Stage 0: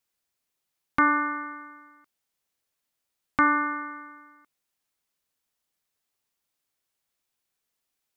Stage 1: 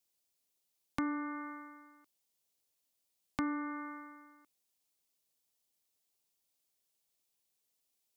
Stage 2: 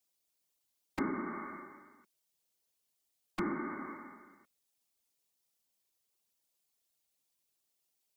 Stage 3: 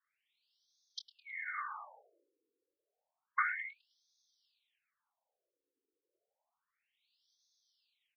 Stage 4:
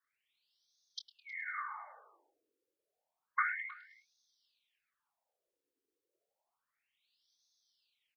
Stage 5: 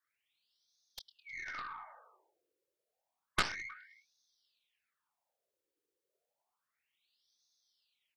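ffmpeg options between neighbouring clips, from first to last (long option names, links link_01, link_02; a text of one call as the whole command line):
ffmpeg -i in.wav -filter_complex "[0:a]equalizer=frequency=1500:width=0.84:gain=-11.5,acrossover=split=280[link_01][link_02];[link_02]acompressor=threshold=-39dB:ratio=6[link_03];[link_01][link_03]amix=inputs=2:normalize=0,lowshelf=frequency=280:gain=-7.5,volume=1.5dB" out.wav
ffmpeg -i in.wav -af "afftfilt=real='hypot(re,im)*cos(2*PI*random(0))':imag='hypot(re,im)*sin(2*PI*random(1))':win_size=512:overlap=0.75,volume=6dB" out.wav
ffmpeg -i in.wav -filter_complex "[0:a]asplit=2[link_01][link_02];[link_02]adelay=25,volume=-11.5dB[link_03];[link_01][link_03]amix=inputs=2:normalize=0,asplit=6[link_04][link_05][link_06][link_07][link_08][link_09];[link_05]adelay=105,afreqshift=-140,volume=-17dB[link_10];[link_06]adelay=210,afreqshift=-280,volume=-22.7dB[link_11];[link_07]adelay=315,afreqshift=-420,volume=-28.4dB[link_12];[link_08]adelay=420,afreqshift=-560,volume=-34dB[link_13];[link_09]adelay=525,afreqshift=-700,volume=-39.7dB[link_14];[link_04][link_10][link_11][link_12][link_13][link_14]amix=inputs=6:normalize=0,afftfilt=real='re*between(b*sr/1024,360*pow(4700/360,0.5+0.5*sin(2*PI*0.3*pts/sr))/1.41,360*pow(4700/360,0.5+0.5*sin(2*PI*0.3*pts/sr))*1.41)':imag='im*between(b*sr/1024,360*pow(4700/360,0.5+0.5*sin(2*PI*0.3*pts/sr))/1.41,360*pow(4700/360,0.5+0.5*sin(2*PI*0.3*pts/sr))*1.41)':win_size=1024:overlap=0.75,volume=11.5dB" out.wav
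ffmpeg -i in.wav -filter_complex "[0:a]asplit=2[link_01][link_02];[link_02]adelay=314.9,volume=-19dB,highshelf=frequency=4000:gain=-7.08[link_03];[link_01][link_03]amix=inputs=2:normalize=0" out.wav
ffmpeg -i in.wav -af "afreqshift=33,aeval=exprs='0.126*(cos(1*acos(clip(val(0)/0.126,-1,1)))-cos(1*PI/2))+0.0562*(cos(2*acos(clip(val(0)/0.126,-1,1)))-cos(2*PI/2))+0.0251*(cos(3*acos(clip(val(0)/0.126,-1,1)))-cos(3*PI/2))+0.02*(cos(5*acos(clip(val(0)/0.126,-1,1)))-cos(5*PI/2))+0.0355*(cos(7*acos(clip(val(0)/0.126,-1,1)))-cos(7*PI/2))':channel_layout=same,volume=2dB" out.wav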